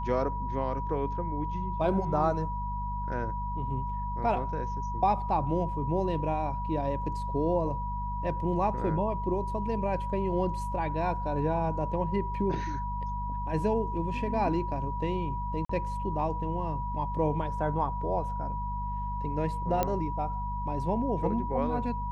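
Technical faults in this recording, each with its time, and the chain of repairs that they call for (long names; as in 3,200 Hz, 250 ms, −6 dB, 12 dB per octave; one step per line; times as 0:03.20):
mains hum 50 Hz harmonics 4 −35 dBFS
whistle 970 Hz −34 dBFS
0:15.65–0:15.69: drop-out 44 ms
0:19.83: click −13 dBFS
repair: click removal
hum removal 50 Hz, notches 4
notch filter 970 Hz, Q 30
repair the gap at 0:15.65, 44 ms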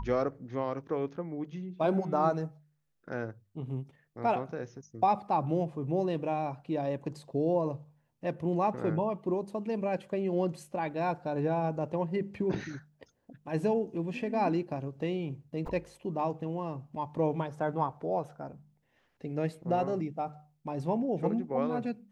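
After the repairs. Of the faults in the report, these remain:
none of them is left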